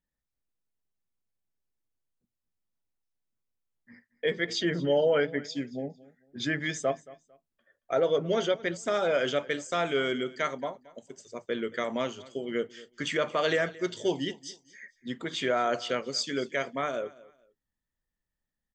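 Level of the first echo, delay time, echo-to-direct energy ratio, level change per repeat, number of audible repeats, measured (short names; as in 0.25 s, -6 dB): -20.5 dB, 0.225 s, -20.0 dB, -11.5 dB, 2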